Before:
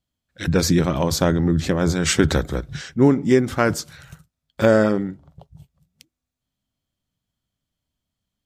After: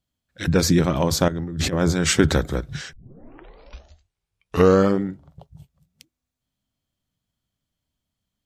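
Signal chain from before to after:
0:01.28–0:01.73: compressor whose output falls as the input rises −24 dBFS, ratio −0.5
0:02.93: tape start 2.08 s

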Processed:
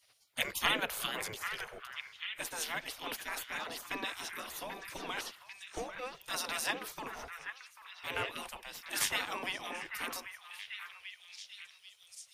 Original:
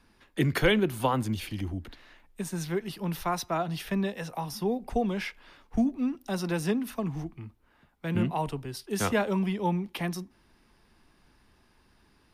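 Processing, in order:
low shelf with overshoot 140 Hz −9 dB, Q 1.5
gate on every frequency bin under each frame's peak −20 dB weak
echo through a band-pass that steps 790 ms, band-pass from 1,600 Hz, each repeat 0.7 octaves, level −5.5 dB
level +5.5 dB

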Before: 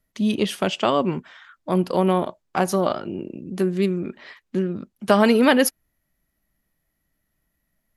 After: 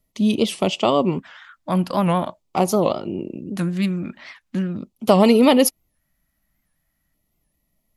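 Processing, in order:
auto-filter notch square 0.42 Hz 410–1,600 Hz
wow of a warped record 78 rpm, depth 160 cents
level +3 dB

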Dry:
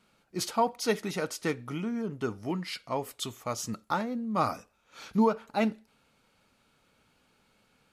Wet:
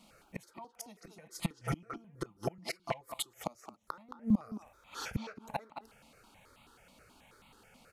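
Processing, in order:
gate with flip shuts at −27 dBFS, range −31 dB
0:01.00–0:03.39: comb filter 5.9 ms, depth 85%
far-end echo of a speakerphone 220 ms, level −7 dB
step-sequenced phaser 9.3 Hz 420–1,600 Hz
level +9 dB

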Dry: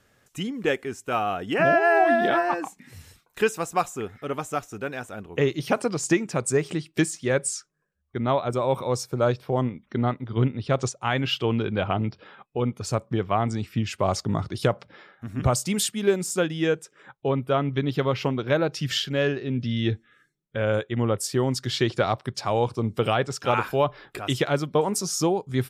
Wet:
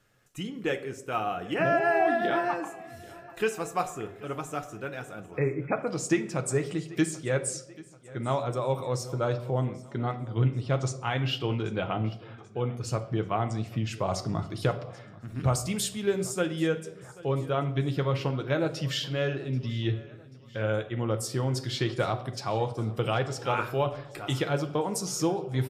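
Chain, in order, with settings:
0:05.31–0:05.87: linear-phase brick-wall low-pass 2,600 Hz
repeating echo 786 ms, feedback 50%, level −21 dB
convolution reverb RT60 0.75 s, pre-delay 6 ms, DRR 5.5 dB
level −6 dB

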